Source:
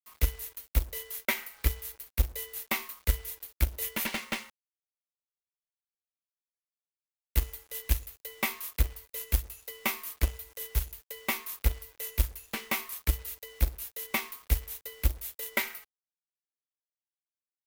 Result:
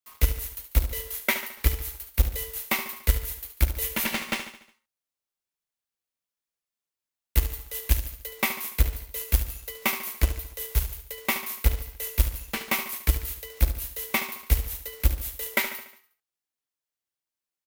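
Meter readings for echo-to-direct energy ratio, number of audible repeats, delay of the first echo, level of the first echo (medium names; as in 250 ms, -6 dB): -9.5 dB, 5, 72 ms, -10.5 dB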